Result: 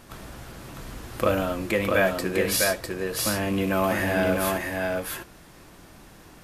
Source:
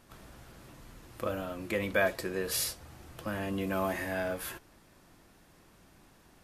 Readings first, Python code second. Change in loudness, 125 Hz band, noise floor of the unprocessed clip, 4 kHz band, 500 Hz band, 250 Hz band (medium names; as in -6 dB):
+8.5 dB, +10.0 dB, -61 dBFS, +9.0 dB, +9.5 dB, +10.0 dB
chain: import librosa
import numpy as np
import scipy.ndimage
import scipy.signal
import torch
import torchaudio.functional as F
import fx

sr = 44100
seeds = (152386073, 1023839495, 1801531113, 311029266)

y = fx.rattle_buzz(x, sr, strikes_db=-39.0, level_db=-37.0)
y = fx.rider(y, sr, range_db=10, speed_s=0.5)
y = y + 10.0 ** (-3.0 / 20.0) * np.pad(y, (int(652 * sr / 1000.0), 0))[:len(y)]
y = F.gain(torch.from_numpy(y), 8.5).numpy()